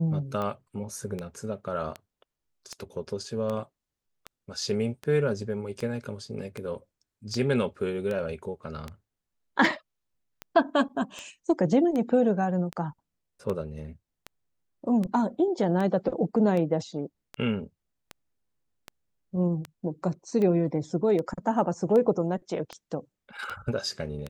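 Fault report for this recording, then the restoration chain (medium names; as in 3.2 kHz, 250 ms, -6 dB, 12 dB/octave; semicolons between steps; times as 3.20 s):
tick 78 rpm -20 dBFS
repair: de-click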